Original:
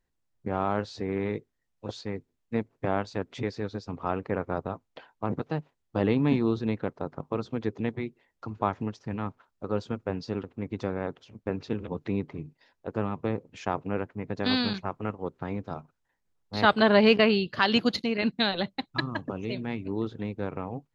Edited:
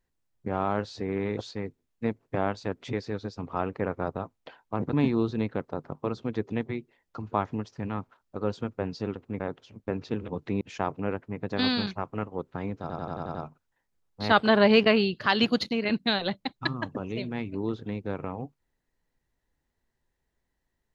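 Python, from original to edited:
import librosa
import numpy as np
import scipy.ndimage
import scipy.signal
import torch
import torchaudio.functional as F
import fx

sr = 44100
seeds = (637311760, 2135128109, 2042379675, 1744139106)

y = fx.edit(x, sr, fx.cut(start_s=1.37, length_s=0.5),
    fx.cut(start_s=5.43, length_s=0.78),
    fx.cut(start_s=10.68, length_s=0.31),
    fx.cut(start_s=12.2, length_s=1.28),
    fx.stutter(start_s=15.68, slice_s=0.09, count=7), tone=tone)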